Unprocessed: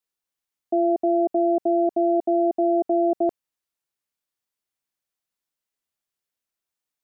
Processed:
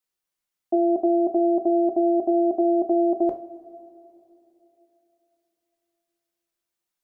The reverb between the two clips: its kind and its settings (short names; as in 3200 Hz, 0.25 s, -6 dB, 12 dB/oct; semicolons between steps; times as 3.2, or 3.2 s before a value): two-slope reverb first 0.32 s, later 3.3 s, from -20 dB, DRR 3.5 dB